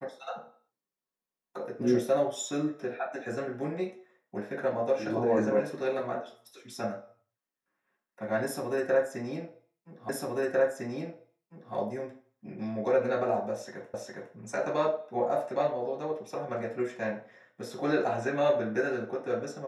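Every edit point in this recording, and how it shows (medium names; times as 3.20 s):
10.09 s: repeat of the last 1.65 s
13.94 s: repeat of the last 0.41 s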